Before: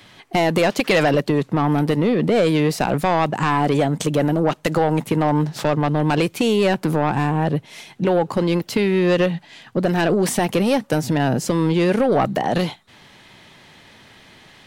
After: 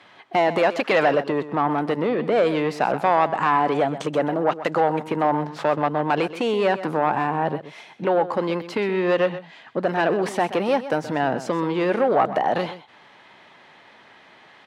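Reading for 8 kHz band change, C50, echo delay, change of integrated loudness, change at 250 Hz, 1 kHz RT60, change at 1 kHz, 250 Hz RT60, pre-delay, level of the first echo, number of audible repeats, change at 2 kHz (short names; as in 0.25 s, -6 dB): under -10 dB, none, 0.127 s, -3.0 dB, -6.5 dB, none, +1.5 dB, none, none, -13.5 dB, 1, -1.5 dB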